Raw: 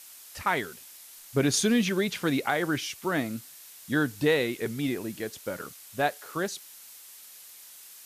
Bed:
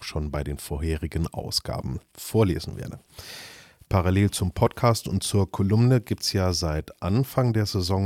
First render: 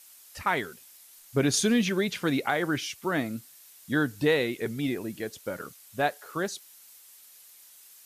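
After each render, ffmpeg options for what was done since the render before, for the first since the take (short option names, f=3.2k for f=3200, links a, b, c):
-af "afftdn=nr=6:nf=-49"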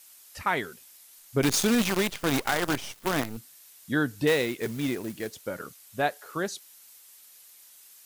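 -filter_complex "[0:a]asettb=1/sr,asplit=3[a][b][c];[a]atrim=end=1.424[d];[b]atrim=start=1.42:end=3.37,asetpts=PTS-STARTPTS,afade=t=in:d=0.004:c=qsin,afade=t=out:st=1.946:d=0.004:c=qsin,acrusher=bits=5:dc=4:mix=0:aa=0.000001[e];[c]atrim=start=3.366[f];[d][e]acrossfade=d=0.004:c1=hsin:c2=qsin[g];[g][f]acrossfade=d=0.004:c1=qsin:c2=hsin,asettb=1/sr,asplit=3[h][i][j];[h]atrim=end=4.274[k];[i]atrim=start=4.27:end=5.42,asetpts=PTS-STARTPTS,afade=t=in:d=0.004:c=qsin,afade=t=out:st=1.146:d=0.004:c=qsin,acrusher=bits=3:mode=log:mix=0:aa=0.000001[l];[j]atrim=start=5.416[m];[k][l]acrossfade=d=0.004:c1=hsin:c2=qsin[n];[n][m]acrossfade=d=0.004:c1=qsin:c2=hsin"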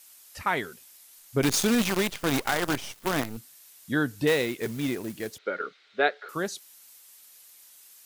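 -filter_complex "[0:a]asettb=1/sr,asplit=3[a][b][c];[a]atrim=end=5.384[d];[b]atrim=start=5.38:end=6.29,asetpts=PTS-STARTPTS,afade=t=in:d=0.004:c=qsin,afade=t=out:st=0.906:d=0.004:c=qsin,highpass=f=220:w=0.5412,highpass=f=220:w=1.3066,equalizer=f=240:t=q:w=4:g=-6,equalizer=f=420:t=q:w=4:g=9,equalizer=f=990:t=q:w=4:g=-5,equalizer=f=1.4k:t=q:w=4:g=9,equalizer=f=2.1k:t=q:w=4:g=7,equalizer=f=3.8k:t=q:w=4:g=7,lowpass=f=4.1k:w=0.5412,lowpass=f=4.1k:w=1.3066[e];[c]atrim=start=6.286[f];[d][e]acrossfade=d=0.004:c1=hsin:c2=qsin[g];[g][f]acrossfade=d=0.004:c1=qsin:c2=hsin"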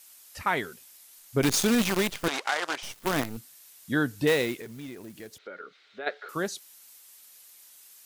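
-filter_complex "[0:a]asettb=1/sr,asplit=3[a][b][c];[a]atrim=end=2.284[d];[b]atrim=start=2.28:end=2.83,asetpts=PTS-STARTPTS,afade=t=in:d=0.004:c=qsin,afade=t=out:st=0.546:d=0.004:c=qsin,highpass=610,lowpass=6.7k[e];[c]atrim=start=2.826[f];[d][e]acrossfade=d=0.004:c1=hsin:c2=qsin[g];[g][f]acrossfade=d=0.004:c1=qsin:c2=hsin,asplit=3[h][i][j];[h]afade=t=out:st=4.6:d=0.02[k];[i]acompressor=threshold=-46dB:ratio=2:attack=3.2:release=140:knee=1:detection=peak,afade=t=in:st=4.6:d=0.02,afade=t=out:st=6.06:d=0.02[l];[j]afade=t=in:st=6.06:d=0.02[m];[k][l][m]amix=inputs=3:normalize=0"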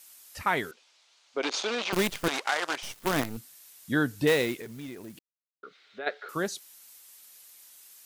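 -filter_complex "[0:a]asettb=1/sr,asplit=3[a][b][c];[a]atrim=end=0.714[d];[b]atrim=start=0.71:end=1.93,asetpts=PTS-STARTPTS,afade=t=in:d=0.004:c=qsin,afade=t=out:st=1.216:d=0.004:c=qsin,highpass=f=380:w=0.5412,highpass=f=380:w=1.3066,equalizer=f=400:t=q:w=4:g=-4,equalizer=f=1.8k:t=q:w=4:g=-5,equalizer=f=5.2k:t=q:w=4:g=-3,lowpass=f=5.3k:w=0.5412,lowpass=f=5.3k:w=1.3066[e];[c]atrim=start=1.926[f];[d][e]acrossfade=d=0.004:c1=hsin:c2=qsin[g];[g][f]acrossfade=d=0.004:c1=qsin:c2=hsin,asplit=3[h][i][j];[h]atrim=end=5.19,asetpts=PTS-STARTPTS,afade=t=out:st=5.186:d=0.004:c=hsin[k];[i]atrim=start=5.19:end=5.63,asetpts=PTS-STARTPTS,volume=0[l];[j]atrim=start=5.63,asetpts=PTS-STARTPTS,afade=t=in:d=0.004:c=hsin[m];[k][l][m]concat=n=3:v=0:a=1"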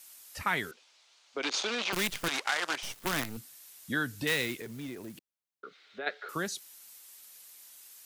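-filter_complex "[0:a]acrossover=split=250|1200[a][b][c];[a]alimiter=level_in=11dB:limit=-24dB:level=0:latency=1,volume=-11dB[d];[b]acompressor=threshold=-37dB:ratio=6[e];[d][e][c]amix=inputs=3:normalize=0"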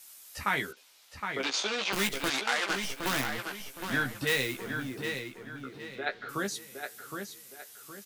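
-filter_complex "[0:a]asplit=2[a][b];[b]adelay=15,volume=-5dB[c];[a][c]amix=inputs=2:normalize=0,asplit=2[d][e];[e]adelay=765,lowpass=f=4.7k:p=1,volume=-6dB,asplit=2[f][g];[g]adelay=765,lowpass=f=4.7k:p=1,volume=0.36,asplit=2[h][i];[i]adelay=765,lowpass=f=4.7k:p=1,volume=0.36,asplit=2[j][k];[k]adelay=765,lowpass=f=4.7k:p=1,volume=0.36[l];[d][f][h][j][l]amix=inputs=5:normalize=0"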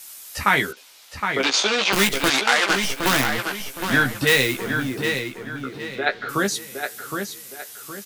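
-af "volume=11dB,alimiter=limit=-3dB:level=0:latency=1"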